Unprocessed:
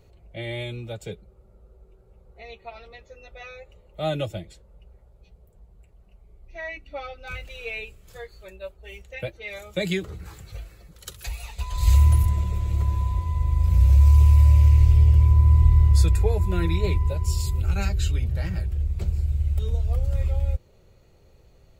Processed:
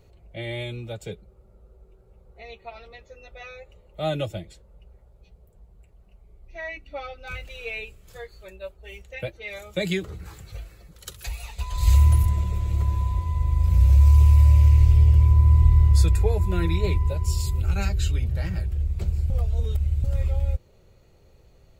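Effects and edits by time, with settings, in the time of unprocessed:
0:19.30–0:20.04: reverse

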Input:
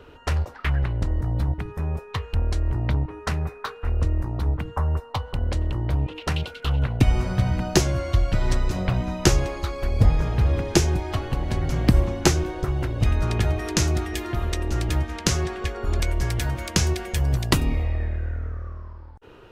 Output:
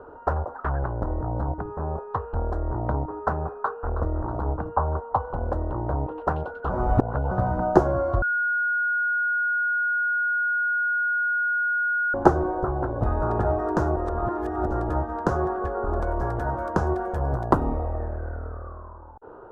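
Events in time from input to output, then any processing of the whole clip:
0:03.55–0:04.05: delay throw 320 ms, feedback 65%, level −12 dB
0:06.70–0:07.31: reverse
0:08.22–0:12.14: beep over 1,440 Hz −23.5 dBFS
0:13.96–0:14.66: reverse
0:16.07–0:17.63: one half of a high-frequency compander encoder only
whole clip: drawn EQ curve 140 Hz 0 dB, 800 Hz +15 dB, 1,500 Hz +7 dB, 2,200 Hz −21 dB; level −5 dB

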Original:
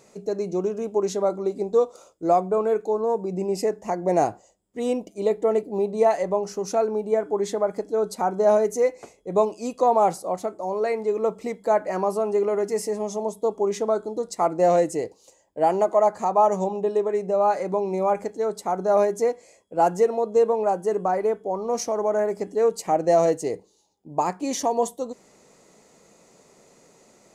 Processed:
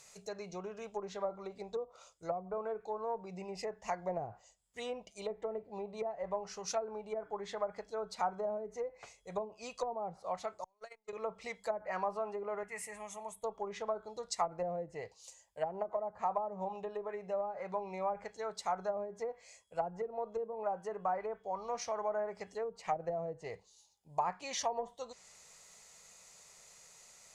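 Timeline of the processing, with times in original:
0:10.64–0:11.13: noise gate −21 dBFS, range −39 dB
0:12.63–0:13.44: drawn EQ curve 110 Hz 0 dB, 400 Hz −9 dB, 1,500 Hz 0 dB, 2,300 Hz +3 dB, 5,100 Hz −21 dB, 9,000 Hz 0 dB
whole clip: treble cut that deepens with the level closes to 400 Hz, closed at −16 dBFS; guitar amp tone stack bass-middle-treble 10-0-10; level +3 dB

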